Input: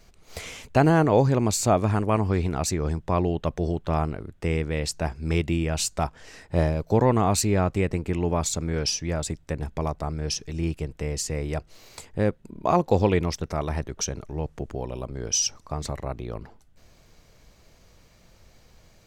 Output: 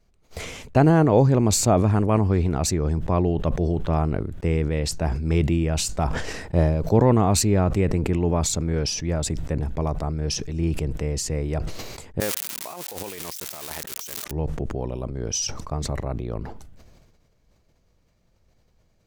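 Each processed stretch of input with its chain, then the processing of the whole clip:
0:12.20–0:14.31: spike at every zero crossing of −14 dBFS + high-pass filter 1,500 Hz 6 dB per octave + compressor whose output falls as the input rises −35 dBFS
whole clip: noise gate −44 dBFS, range −13 dB; tilt shelving filter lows +3.5 dB, about 790 Hz; level that may fall only so fast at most 37 dB per second

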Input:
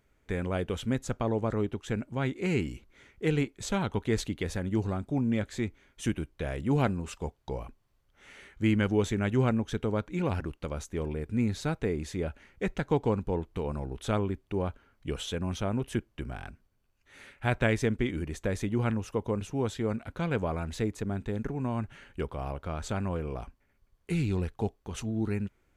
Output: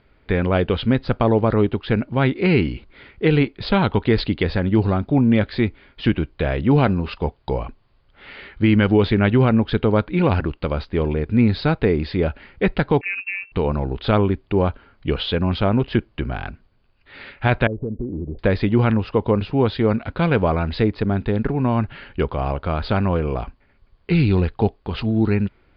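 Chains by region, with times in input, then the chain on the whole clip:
0:13.01–0:13.52: phases set to zero 188 Hz + downward compressor 1.5 to 1, threshold −50 dBFS + voice inversion scrambler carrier 2,700 Hz
0:17.67–0:18.39: Butterworth low-pass 630 Hz + downward compressor 4 to 1, threshold −36 dBFS
whole clip: Chebyshev low-pass filter 4,900 Hz, order 8; boost into a limiter +17.5 dB; level −4.5 dB

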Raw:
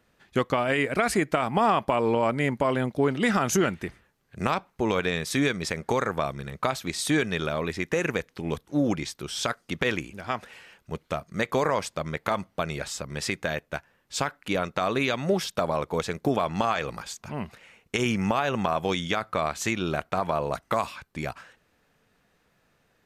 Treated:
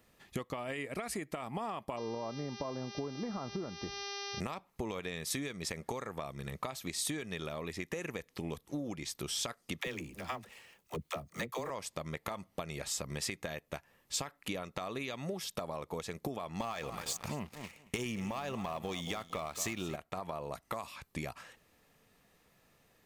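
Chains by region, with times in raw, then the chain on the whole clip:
0:01.96–0:04.39: low-pass filter 1,200 Hz 24 dB per octave + hum with harmonics 400 Hz, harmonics 15, −39 dBFS −2 dB per octave
0:09.81–0:11.70: mu-law and A-law mismatch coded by A + all-pass dispersion lows, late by 54 ms, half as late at 380 Hz
0:16.60–0:19.96: repeating echo 227 ms, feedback 25%, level −15 dB + leveller curve on the samples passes 2
whole clip: downward compressor 16 to 1, threshold −34 dBFS; high-shelf EQ 8,300 Hz +10 dB; notch filter 1,500 Hz, Q 6.7; level −1 dB

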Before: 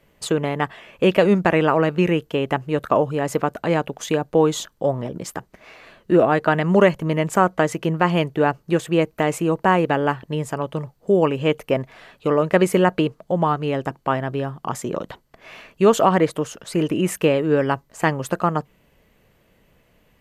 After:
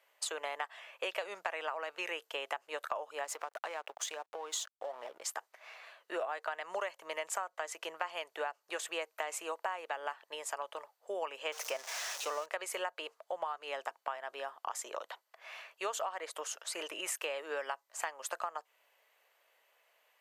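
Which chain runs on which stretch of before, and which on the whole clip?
0:03.24–0:05.22: downward compressor 10 to 1, threshold −22 dBFS + slack as between gear wheels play −40 dBFS
0:11.52–0:12.46: converter with a step at zero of −30 dBFS + parametric band 5,900 Hz +9 dB 0.54 octaves
whole clip: high-pass filter 640 Hz 24 dB per octave; dynamic equaliser 7,100 Hz, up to +5 dB, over −47 dBFS, Q 0.85; downward compressor 10 to 1, threshold −27 dBFS; level −6.5 dB

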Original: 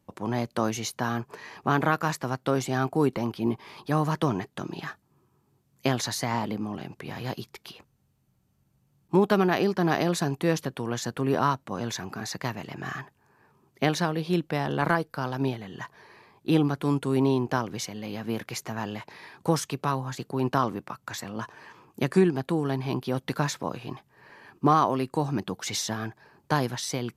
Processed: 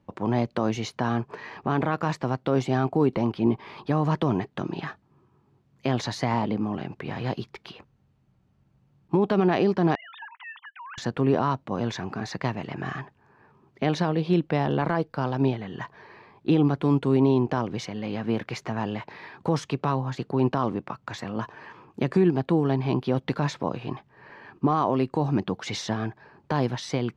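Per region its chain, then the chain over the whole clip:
0:09.95–0:10.98: three sine waves on the formant tracks + Butterworth high-pass 900 Hz 72 dB per octave + downward compressor 2 to 1, threshold −47 dBFS
whole clip: Bessel low-pass filter 2,800 Hz, order 2; dynamic equaliser 1,500 Hz, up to −5 dB, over −43 dBFS, Q 1.5; brickwall limiter −16.5 dBFS; level +4.5 dB

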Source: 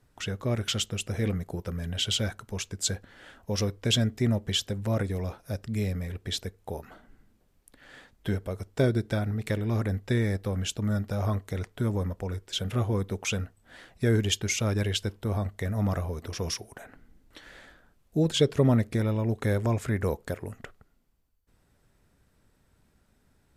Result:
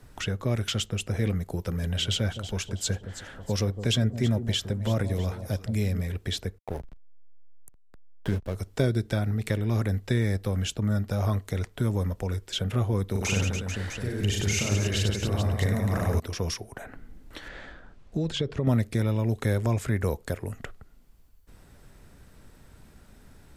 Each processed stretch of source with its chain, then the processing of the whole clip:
0:01.53–0:06.01: de-essing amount 25% + delay that swaps between a low-pass and a high-pass 162 ms, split 870 Hz, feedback 59%, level −11 dB
0:06.58–0:08.55: hum removal 215.2 Hz, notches 28 + slack as between gear wheels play −34 dBFS
0:13.11–0:16.20: notch filter 3,300 Hz, Q 11 + compressor whose output falls as the input rises −30 dBFS + reverse bouncing-ball delay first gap 40 ms, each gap 1.4×, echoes 6, each echo −2 dB
0:17.48–0:18.67: low-pass filter 6,700 Hz + high-shelf EQ 4,300 Hz −7 dB + downward compressor 3 to 1, threshold −26 dBFS
whole clip: low-shelf EQ 67 Hz +8 dB; multiband upward and downward compressor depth 40%

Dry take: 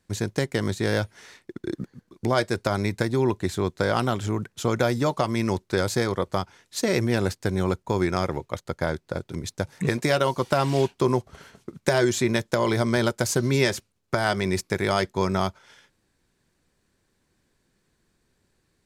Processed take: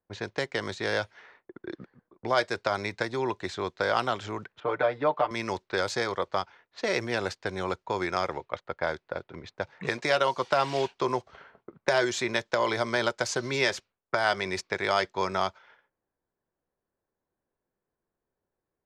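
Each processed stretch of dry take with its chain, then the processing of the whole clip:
0:04.60–0:05.31: high-pass filter 240 Hz 6 dB per octave + high-frequency loss of the air 470 metres + comb filter 6.7 ms, depth 84%
whole clip: noise gate −52 dBFS, range −6 dB; low-pass that shuts in the quiet parts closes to 830 Hz, open at −20 dBFS; three-way crossover with the lows and the highs turned down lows −14 dB, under 460 Hz, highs −21 dB, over 6,600 Hz

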